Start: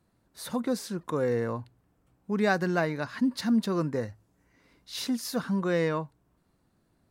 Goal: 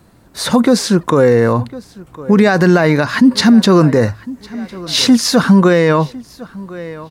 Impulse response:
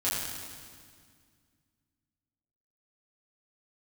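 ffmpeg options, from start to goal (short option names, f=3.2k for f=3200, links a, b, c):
-filter_complex "[0:a]asplit=2[a][b];[b]adelay=1054,lowpass=f=4.4k:p=1,volume=-22.5dB,asplit=2[c][d];[d]adelay=1054,lowpass=f=4.4k:p=1,volume=0.28[e];[c][e]amix=inputs=2:normalize=0[f];[a][f]amix=inputs=2:normalize=0,acrossover=split=8800[g][h];[h]acompressor=threshold=-60dB:ratio=4:attack=1:release=60[i];[g][i]amix=inputs=2:normalize=0,alimiter=level_in=23dB:limit=-1dB:release=50:level=0:latency=1,volume=-1dB"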